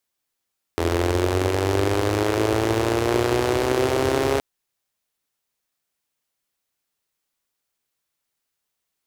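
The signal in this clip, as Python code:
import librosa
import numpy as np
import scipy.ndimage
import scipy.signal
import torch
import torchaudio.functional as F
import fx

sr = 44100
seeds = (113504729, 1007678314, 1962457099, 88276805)

y = fx.engine_four_rev(sr, seeds[0], length_s=3.62, rpm=2500, resonances_hz=(89.0, 360.0), end_rpm=4100)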